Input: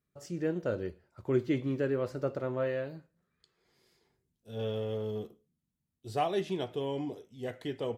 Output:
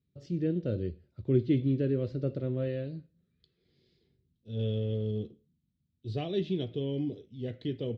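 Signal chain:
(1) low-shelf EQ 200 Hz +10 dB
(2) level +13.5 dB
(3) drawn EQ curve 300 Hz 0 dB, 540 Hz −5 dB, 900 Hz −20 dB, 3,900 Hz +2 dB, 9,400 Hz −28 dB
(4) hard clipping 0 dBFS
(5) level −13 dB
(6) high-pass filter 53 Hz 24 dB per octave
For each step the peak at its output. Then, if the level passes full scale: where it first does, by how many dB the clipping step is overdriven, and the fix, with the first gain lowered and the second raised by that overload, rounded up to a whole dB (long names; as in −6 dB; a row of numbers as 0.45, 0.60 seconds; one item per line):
−14.0, −0.5, −1.5, −1.5, −14.5, −14.5 dBFS
no step passes full scale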